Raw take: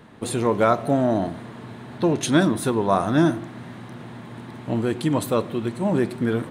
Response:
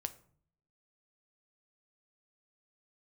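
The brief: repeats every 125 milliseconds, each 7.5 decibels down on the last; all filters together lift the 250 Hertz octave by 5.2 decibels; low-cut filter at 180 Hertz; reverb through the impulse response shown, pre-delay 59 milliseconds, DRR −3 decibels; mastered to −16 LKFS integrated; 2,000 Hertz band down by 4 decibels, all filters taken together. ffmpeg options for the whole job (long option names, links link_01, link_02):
-filter_complex "[0:a]highpass=180,equalizer=frequency=250:width_type=o:gain=8,equalizer=frequency=2000:width_type=o:gain=-6,aecho=1:1:125|250|375|500|625:0.422|0.177|0.0744|0.0312|0.0131,asplit=2[link_01][link_02];[1:a]atrim=start_sample=2205,adelay=59[link_03];[link_02][link_03]afir=irnorm=-1:irlink=0,volume=4.5dB[link_04];[link_01][link_04]amix=inputs=2:normalize=0,volume=-2.5dB"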